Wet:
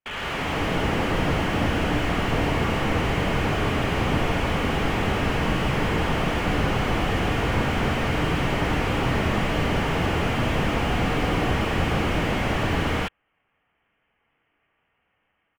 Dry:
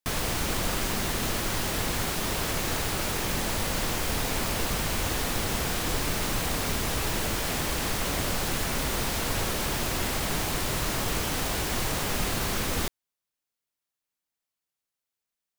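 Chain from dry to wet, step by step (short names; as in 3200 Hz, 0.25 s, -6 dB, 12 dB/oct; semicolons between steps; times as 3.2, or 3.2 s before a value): tracing distortion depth 0.059 ms; HPF 660 Hz 6 dB/oct; AGC gain up to 16 dB; harmoniser -12 st -3 dB; non-linear reverb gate 0.21 s rising, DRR -5 dB; inverted band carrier 3400 Hz; slew limiter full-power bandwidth 70 Hz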